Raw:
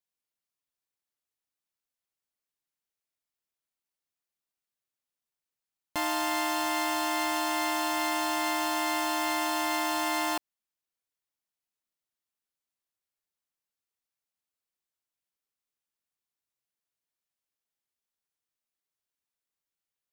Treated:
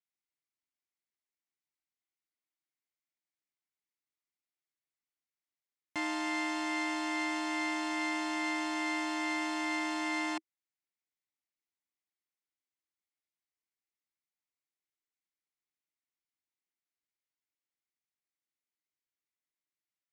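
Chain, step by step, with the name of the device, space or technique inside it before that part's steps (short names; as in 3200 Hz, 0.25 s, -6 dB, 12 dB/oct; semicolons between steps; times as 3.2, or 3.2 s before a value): car door speaker (speaker cabinet 81–8200 Hz, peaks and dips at 320 Hz +8 dB, 510 Hz -7 dB, 2100 Hz +9 dB); gain -8 dB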